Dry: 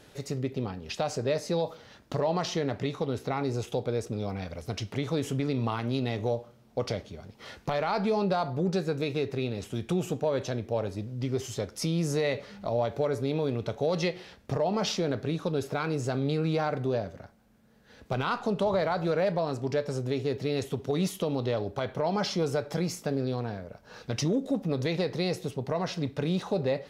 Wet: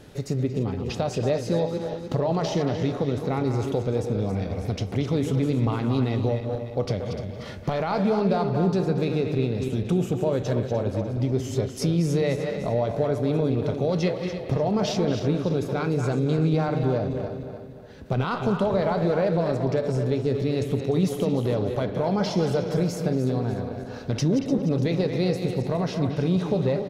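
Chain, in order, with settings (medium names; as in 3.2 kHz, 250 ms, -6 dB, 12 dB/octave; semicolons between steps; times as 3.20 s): backward echo that repeats 149 ms, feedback 62%, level -9 dB; bass shelf 490 Hz +9 dB; in parallel at -0.5 dB: compression, threshold -29 dBFS, peak gain reduction 13 dB; on the sum: speakerphone echo 230 ms, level -7 dB; trim -4 dB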